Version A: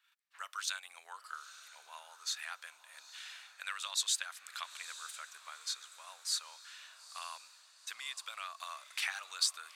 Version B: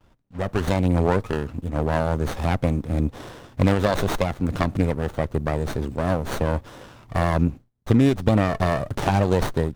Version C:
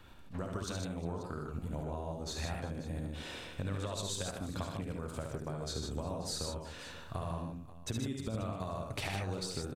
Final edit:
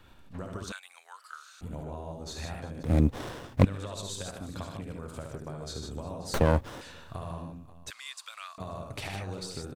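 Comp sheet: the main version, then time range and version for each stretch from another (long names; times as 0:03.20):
C
0:00.72–0:01.61: punch in from A
0:02.83–0:03.65: punch in from B
0:06.34–0:06.81: punch in from B
0:07.90–0:08.58: punch in from A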